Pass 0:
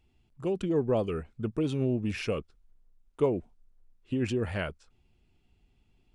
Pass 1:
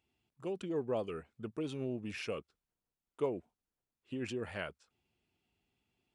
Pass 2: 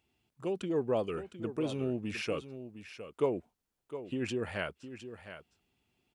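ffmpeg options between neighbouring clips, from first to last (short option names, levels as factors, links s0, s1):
-af "highpass=86,lowshelf=f=280:g=-8.5,volume=0.531"
-af "aecho=1:1:710:0.266,volume=1.68"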